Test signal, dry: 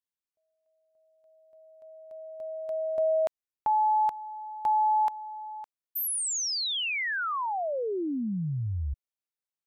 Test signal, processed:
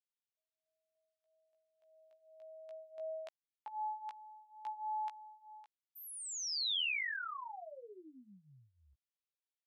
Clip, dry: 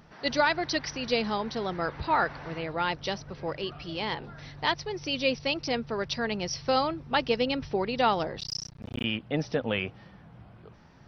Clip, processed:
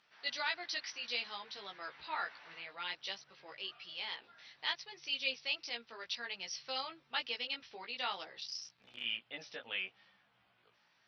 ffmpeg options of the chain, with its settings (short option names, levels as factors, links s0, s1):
-af "bandpass=f=3200:t=q:w=1.1:csg=0,flanger=delay=15:depth=2.3:speed=0.59,volume=0.841"